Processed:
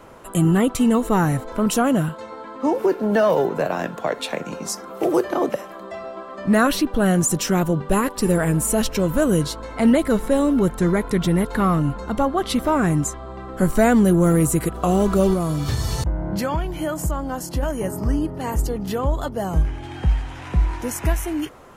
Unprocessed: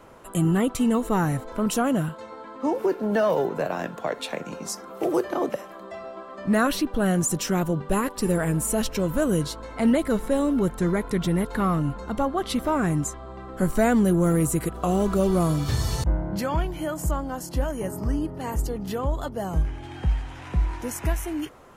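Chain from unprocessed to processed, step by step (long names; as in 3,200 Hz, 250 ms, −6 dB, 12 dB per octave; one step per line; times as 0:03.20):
0:15.33–0:17.63: downward compressor, threshold −23 dBFS, peak gain reduction 6 dB
level +4.5 dB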